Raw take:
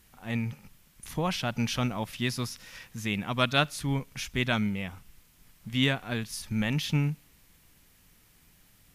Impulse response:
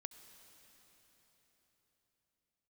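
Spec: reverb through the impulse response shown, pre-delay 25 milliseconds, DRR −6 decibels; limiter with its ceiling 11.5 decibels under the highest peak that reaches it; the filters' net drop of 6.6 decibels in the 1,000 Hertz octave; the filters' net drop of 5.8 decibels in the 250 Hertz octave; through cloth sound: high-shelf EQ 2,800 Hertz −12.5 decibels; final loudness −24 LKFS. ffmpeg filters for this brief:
-filter_complex "[0:a]equalizer=frequency=250:width_type=o:gain=-7,equalizer=frequency=1000:width_type=o:gain=-7,alimiter=limit=-23.5dB:level=0:latency=1,asplit=2[link_01][link_02];[1:a]atrim=start_sample=2205,adelay=25[link_03];[link_02][link_03]afir=irnorm=-1:irlink=0,volume=11dB[link_04];[link_01][link_04]amix=inputs=2:normalize=0,highshelf=frequency=2800:gain=-12.5,volume=6.5dB"

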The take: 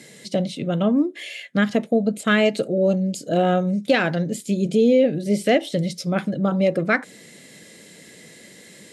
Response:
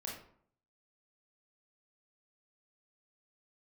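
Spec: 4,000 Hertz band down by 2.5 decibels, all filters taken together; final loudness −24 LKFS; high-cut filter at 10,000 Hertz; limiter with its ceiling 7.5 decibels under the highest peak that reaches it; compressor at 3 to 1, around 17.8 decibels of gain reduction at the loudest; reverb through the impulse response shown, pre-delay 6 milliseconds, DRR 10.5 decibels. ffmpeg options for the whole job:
-filter_complex "[0:a]lowpass=10000,equalizer=frequency=4000:width_type=o:gain=-3.5,acompressor=threshold=-38dB:ratio=3,alimiter=level_in=4.5dB:limit=-24dB:level=0:latency=1,volume=-4.5dB,asplit=2[link_01][link_02];[1:a]atrim=start_sample=2205,adelay=6[link_03];[link_02][link_03]afir=irnorm=-1:irlink=0,volume=-10dB[link_04];[link_01][link_04]amix=inputs=2:normalize=0,volume=14dB"

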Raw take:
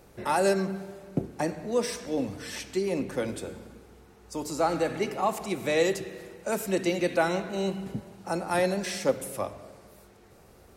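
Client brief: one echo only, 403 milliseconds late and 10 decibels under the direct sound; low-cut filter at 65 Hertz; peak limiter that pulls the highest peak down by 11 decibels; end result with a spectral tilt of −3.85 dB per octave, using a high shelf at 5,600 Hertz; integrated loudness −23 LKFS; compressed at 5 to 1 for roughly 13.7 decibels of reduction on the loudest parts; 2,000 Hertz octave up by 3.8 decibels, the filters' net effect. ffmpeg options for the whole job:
ffmpeg -i in.wav -af "highpass=65,equalizer=frequency=2000:width_type=o:gain=4,highshelf=frequency=5600:gain=7,acompressor=threshold=-34dB:ratio=5,alimiter=level_in=8dB:limit=-24dB:level=0:latency=1,volume=-8dB,aecho=1:1:403:0.316,volume=18dB" out.wav

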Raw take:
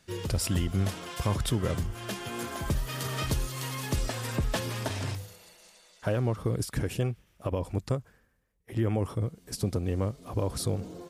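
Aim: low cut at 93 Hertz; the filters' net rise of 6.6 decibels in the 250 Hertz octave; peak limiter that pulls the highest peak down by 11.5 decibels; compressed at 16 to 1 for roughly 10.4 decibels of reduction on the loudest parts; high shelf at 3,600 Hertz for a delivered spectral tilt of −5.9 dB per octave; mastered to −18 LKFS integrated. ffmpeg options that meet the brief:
ffmpeg -i in.wav -af "highpass=93,equalizer=frequency=250:width_type=o:gain=9,highshelf=frequency=3600:gain=-7.5,acompressor=threshold=-30dB:ratio=16,volume=22.5dB,alimiter=limit=-7.5dB:level=0:latency=1" out.wav

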